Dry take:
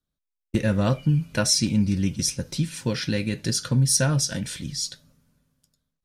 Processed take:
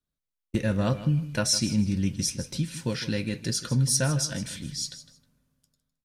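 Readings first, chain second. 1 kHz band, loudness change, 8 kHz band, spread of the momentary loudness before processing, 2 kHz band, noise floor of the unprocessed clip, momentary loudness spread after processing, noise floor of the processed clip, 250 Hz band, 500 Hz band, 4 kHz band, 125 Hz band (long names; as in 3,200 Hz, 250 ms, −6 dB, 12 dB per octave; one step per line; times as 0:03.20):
−3.5 dB, −3.5 dB, −3.5 dB, 9 LU, −3.5 dB, −84 dBFS, 10 LU, below −85 dBFS, −3.0 dB, −3.5 dB, −3.5 dB, −3.5 dB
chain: repeating echo 157 ms, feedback 22%, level −14 dB
level −3.5 dB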